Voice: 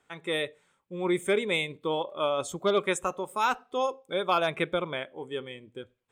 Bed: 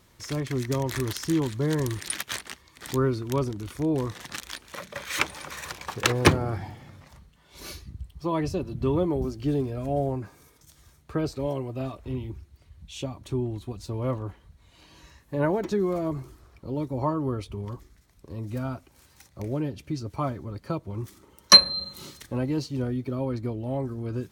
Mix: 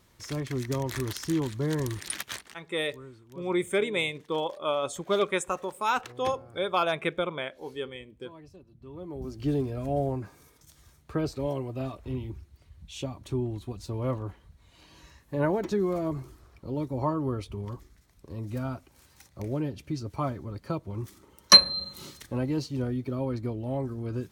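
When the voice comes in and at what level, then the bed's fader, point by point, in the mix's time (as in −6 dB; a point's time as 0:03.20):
2.45 s, −0.5 dB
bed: 0:02.28 −3 dB
0:02.84 −22.5 dB
0:08.85 −22.5 dB
0:09.42 −1.5 dB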